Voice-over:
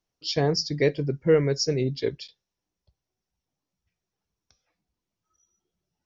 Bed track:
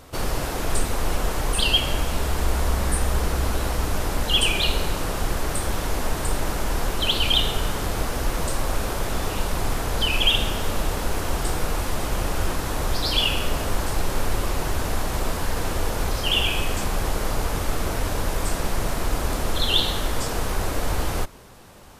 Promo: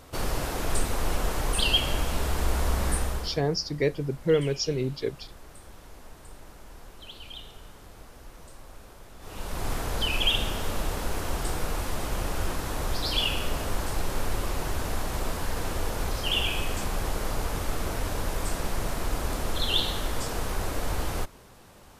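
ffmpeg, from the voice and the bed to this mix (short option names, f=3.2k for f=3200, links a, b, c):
-filter_complex "[0:a]adelay=3000,volume=-3dB[a];[1:a]volume=14dB,afade=t=out:st=2.92:d=0.48:silence=0.112202,afade=t=in:st=9.19:d=0.53:silence=0.133352[b];[a][b]amix=inputs=2:normalize=0"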